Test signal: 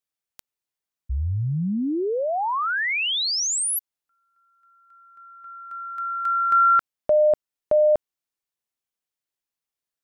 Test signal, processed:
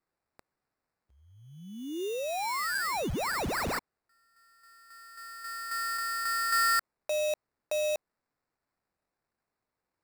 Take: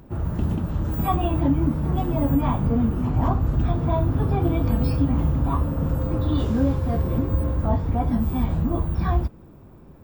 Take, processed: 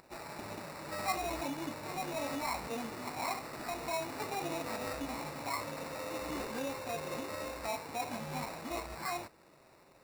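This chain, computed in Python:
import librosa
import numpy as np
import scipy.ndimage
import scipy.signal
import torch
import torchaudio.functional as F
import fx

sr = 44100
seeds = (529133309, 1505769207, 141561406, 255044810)

p1 = scipy.signal.sosfilt(scipy.signal.butter(2, 670.0, 'highpass', fs=sr, output='sos'), x)
p2 = fx.over_compress(p1, sr, threshold_db=-34.0, ratio=-1.0)
p3 = p1 + F.gain(torch.from_numpy(p2), -1.0).numpy()
p4 = fx.sample_hold(p3, sr, seeds[0], rate_hz=3200.0, jitter_pct=0)
y = F.gain(torch.from_numpy(p4), -9.0).numpy()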